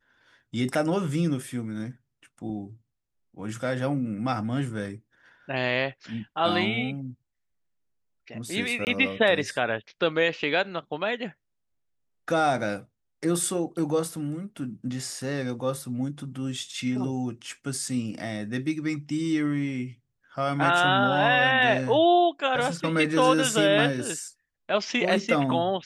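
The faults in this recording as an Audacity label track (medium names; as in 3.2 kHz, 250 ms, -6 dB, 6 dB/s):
8.850000	8.870000	dropout 19 ms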